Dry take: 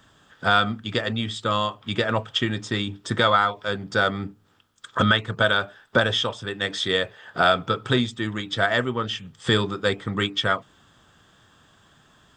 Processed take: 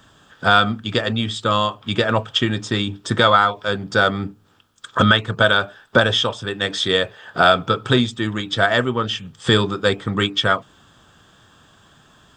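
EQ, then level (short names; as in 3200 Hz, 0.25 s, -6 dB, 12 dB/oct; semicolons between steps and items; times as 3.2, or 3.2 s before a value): bell 2000 Hz -5 dB 0.21 oct; +5.0 dB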